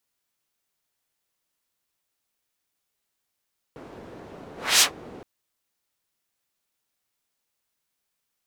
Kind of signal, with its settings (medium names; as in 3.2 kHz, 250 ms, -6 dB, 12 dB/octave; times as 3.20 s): whoosh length 1.47 s, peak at 1.05 s, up 0.27 s, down 0.12 s, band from 380 Hz, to 5.8 kHz, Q 0.9, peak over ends 27 dB